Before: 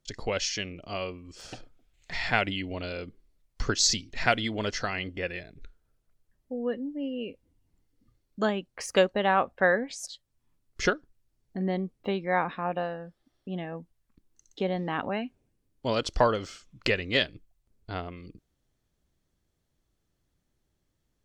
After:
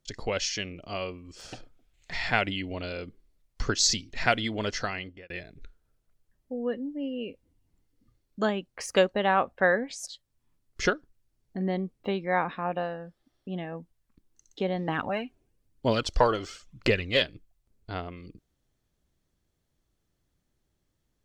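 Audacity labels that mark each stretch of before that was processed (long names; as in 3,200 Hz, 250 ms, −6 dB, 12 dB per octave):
4.850000	5.300000	fade out
14.880000	17.220000	phase shifter 1 Hz, delay 3.1 ms, feedback 45%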